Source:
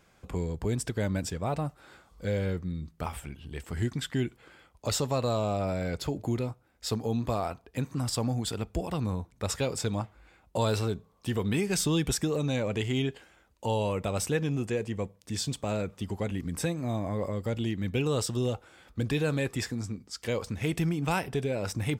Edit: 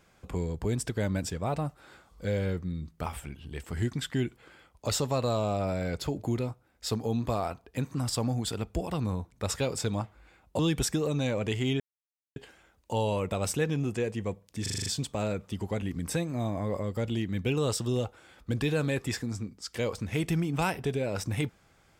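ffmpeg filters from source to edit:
-filter_complex "[0:a]asplit=9[s0][s1][s2][s3][s4][s5][s6][s7][s8];[s0]atrim=end=10.592[s9];[s1]atrim=start=11.878:end=13.09,asetpts=PTS-STARTPTS,afade=t=out:st=1.208:d=0.004:c=hsin,apad=pad_dur=0.56[s10];[s2]atrim=start=13.09:end=15.392,asetpts=PTS-STARTPTS,afade=t=in:d=0.004:c=hsin[s11];[s3]atrim=start=15.348:end=15.392[s12];[s4]atrim=start=15.348:end=15.392[s13];[s5]atrim=start=15.348:end=15.392[s14];[s6]atrim=start=15.348:end=15.392[s15];[s7]atrim=start=15.348:end=15.392[s16];[s8]atrim=start=15.348[s17];[s10][s11]concat=n=2:v=0:a=1[s18];[s9][s18]acrossfade=d=0.004:c1=hsin:c2=hsin[s19];[s19][s12]acrossfade=d=0.004:c1=hsin:c2=hsin[s20];[s20][s13]acrossfade=d=0.004:c1=hsin:c2=hsin[s21];[s21][s14]acrossfade=d=0.004:c1=hsin:c2=hsin[s22];[s22][s15]acrossfade=d=0.004:c1=hsin:c2=hsin[s23];[s23][s16]acrossfade=d=0.004:c1=hsin:c2=hsin[s24];[s24][s17]acrossfade=d=0.004:c1=hsin:c2=hsin"

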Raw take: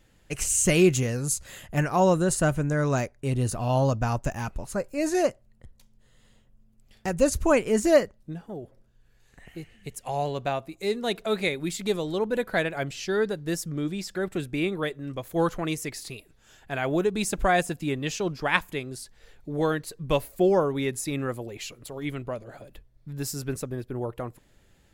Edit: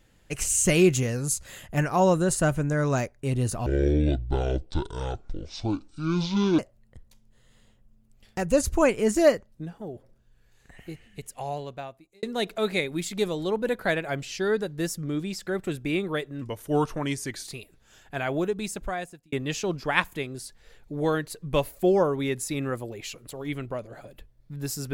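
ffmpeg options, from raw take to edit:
-filter_complex "[0:a]asplit=7[s0][s1][s2][s3][s4][s5][s6];[s0]atrim=end=3.664[s7];[s1]atrim=start=3.66:end=5.27,asetpts=PTS-STARTPTS,asetrate=24255,aresample=44100[s8];[s2]atrim=start=5.266:end=10.91,asetpts=PTS-STARTPTS,afade=t=out:st=4.464:d=1.18[s9];[s3]atrim=start=10.91:end=15.104,asetpts=PTS-STARTPTS,afade=t=in:d=0.004:c=hsin[s10];[s4]atrim=start=15.1:end=16.04,asetpts=PTS-STARTPTS,asetrate=39249,aresample=44100[s11];[s5]atrim=start=16.036:end=17.89,asetpts=PTS-STARTPTS,afade=t=out:st=0.694:d=1.16[s12];[s6]atrim=start=17.89,asetpts=PTS-STARTPTS,afade=t=in:d=0.004:c=hsin[s13];[s7][s8]acrossfade=d=0.004:c1=hsin:c2=hsin[s14];[s9][s10]concat=n=2:v=0:a=1[s15];[s14][s15]acrossfade=d=0.004:c1=hsin:c2=hsin[s16];[s16][s11]acrossfade=d=0.004:c1=hsin:c2=hsin[s17];[s12][s13]concat=n=2:v=0:a=1[s18];[s17][s18]acrossfade=d=0.004:c1=hsin:c2=hsin"

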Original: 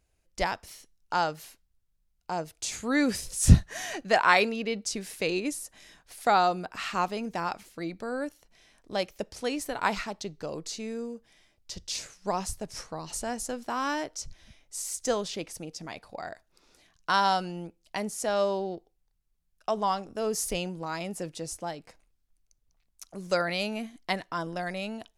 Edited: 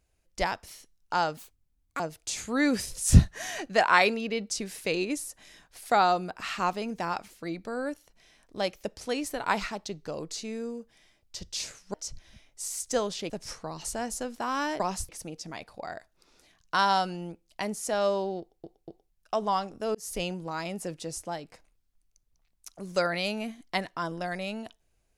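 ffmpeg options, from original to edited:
-filter_complex "[0:a]asplit=11[s0][s1][s2][s3][s4][s5][s6][s7][s8][s9][s10];[s0]atrim=end=1.374[s11];[s1]atrim=start=1.37:end=2.35,asetpts=PTS-STARTPTS,asetrate=68796,aresample=44100[s12];[s2]atrim=start=2.346:end=12.292[s13];[s3]atrim=start=14.078:end=15.442[s14];[s4]atrim=start=12.578:end=14.082[s15];[s5]atrim=start=12.288:end=12.582[s16];[s6]atrim=start=15.438:end=18.992[s17];[s7]atrim=start=18.748:end=18.992[s18];[s8]atrim=start=18.748:end=18.992[s19];[s9]atrim=start=19.468:end=20.3,asetpts=PTS-STARTPTS,afade=t=out:st=0.828:d=0.004:c=hsin[s20];[s10]atrim=start=20.3,asetpts=PTS-STARTPTS,afade=t=in:d=0.28[s21];[s11][s12]acrossfade=d=0.004:c1=hsin:c2=hsin[s22];[s22][s13]acrossfade=d=0.004:c1=hsin:c2=hsin[s23];[s23][s14]acrossfade=d=0.004:c1=hsin:c2=hsin[s24];[s24][s15]acrossfade=d=0.004:c1=hsin:c2=hsin[s25];[s25][s16]acrossfade=d=0.004:c1=hsin:c2=hsin[s26];[s26][s17]acrossfade=d=0.004:c1=hsin:c2=hsin[s27];[s27][s18]acrossfade=d=0.004:c1=hsin:c2=hsin[s28];[s28][s19]acrossfade=d=0.004:c1=hsin:c2=hsin[s29];[s20][s21]concat=n=2:v=0:a=1[s30];[s29][s30]acrossfade=d=0.004:c1=hsin:c2=hsin"

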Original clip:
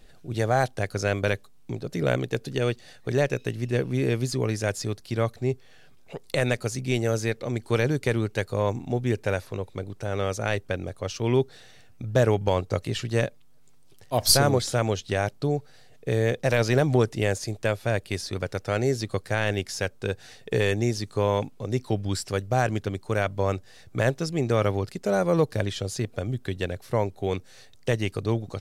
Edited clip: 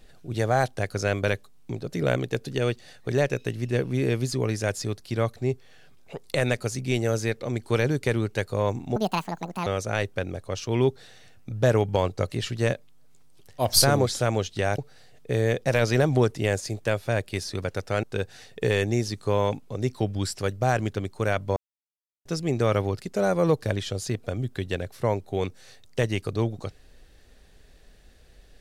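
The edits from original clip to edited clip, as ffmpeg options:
-filter_complex "[0:a]asplit=7[s0][s1][s2][s3][s4][s5][s6];[s0]atrim=end=8.964[s7];[s1]atrim=start=8.96:end=10.19,asetpts=PTS-STARTPTS,asetrate=77175,aresample=44100[s8];[s2]atrim=start=10.186:end=15.312[s9];[s3]atrim=start=15.558:end=18.812[s10];[s4]atrim=start=19.928:end=23.46,asetpts=PTS-STARTPTS,afade=t=out:st=3.528:d=0.004:c=hsin[s11];[s5]atrim=start=23.46:end=24.15,asetpts=PTS-STARTPTS,volume=0[s12];[s6]atrim=start=24.15,asetpts=PTS-STARTPTS,afade=t=in:d=0.004:c=hsin[s13];[s7][s8]acrossfade=d=0.004:c1=hsin:c2=hsin[s14];[s14][s9]acrossfade=d=0.004:c1=hsin:c2=hsin[s15];[s15][s10]acrossfade=d=0.004:c1=hsin:c2=hsin[s16];[s11][s12][s13]concat=n=3:v=0:a=1[s17];[s16][s17]acrossfade=d=0.004:c1=hsin:c2=hsin"

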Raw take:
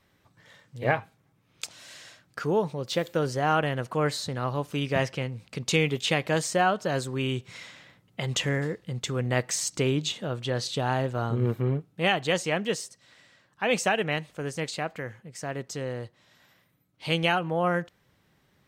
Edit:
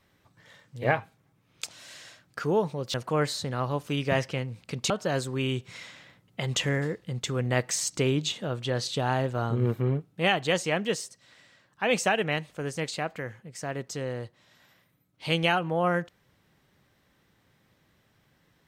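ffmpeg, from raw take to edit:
-filter_complex "[0:a]asplit=3[s0][s1][s2];[s0]atrim=end=2.942[s3];[s1]atrim=start=3.778:end=5.742[s4];[s2]atrim=start=6.698[s5];[s3][s4]acrossfade=d=0.004:c1=hsin:c2=hsin[s6];[s6][s5]acrossfade=d=0.004:c1=hsin:c2=hsin"

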